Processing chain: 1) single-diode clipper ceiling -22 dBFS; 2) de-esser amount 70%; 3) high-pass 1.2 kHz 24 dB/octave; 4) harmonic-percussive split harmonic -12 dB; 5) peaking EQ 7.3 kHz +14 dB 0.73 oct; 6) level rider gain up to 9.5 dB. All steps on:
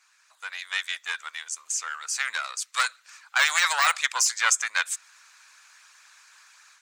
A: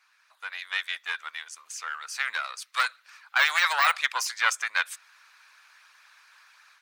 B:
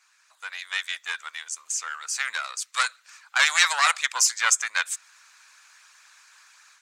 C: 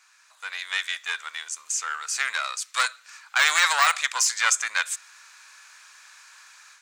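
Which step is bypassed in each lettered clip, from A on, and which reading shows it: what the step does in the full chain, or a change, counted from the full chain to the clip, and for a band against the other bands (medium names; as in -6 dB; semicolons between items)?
5, 8 kHz band -10.5 dB; 2, momentary loudness spread change +2 LU; 4, momentary loudness spread change +1 LU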